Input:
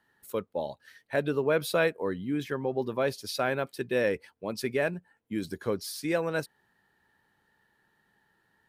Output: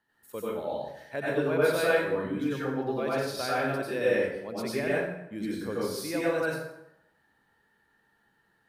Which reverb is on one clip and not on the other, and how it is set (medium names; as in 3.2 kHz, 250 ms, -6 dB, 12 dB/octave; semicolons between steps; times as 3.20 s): plate-style reverb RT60 0.82 s, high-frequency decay 0.7×, pre-delay 80 ms, DRR -7.5 dB; trim -7 dB